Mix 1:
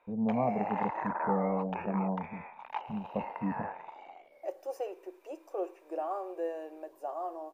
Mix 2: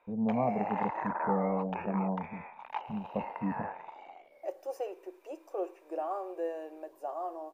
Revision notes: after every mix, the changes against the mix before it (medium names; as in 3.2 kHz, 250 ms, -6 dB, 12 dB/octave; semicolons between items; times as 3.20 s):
no change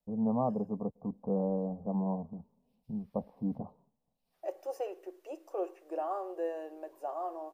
background: muted